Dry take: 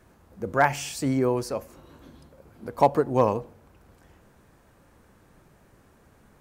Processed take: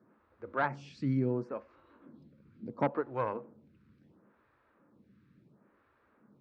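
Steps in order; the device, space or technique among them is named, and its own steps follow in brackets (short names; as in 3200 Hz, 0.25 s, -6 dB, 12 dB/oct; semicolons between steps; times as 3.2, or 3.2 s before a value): vibe pedal into a guitar amplifier (photocell phaser 0.72 Hz; tube stage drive 13 dB, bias 0.35; speaker cabinet 96–3800 Hz, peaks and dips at 130 Hz +6 dB, 210 Hz +9 dB, 300 Hz +5 dB, 740 Hz -6 dB, 1300 Hz +4 dB, 3100 Hz -5 dB); gain -6.5 dB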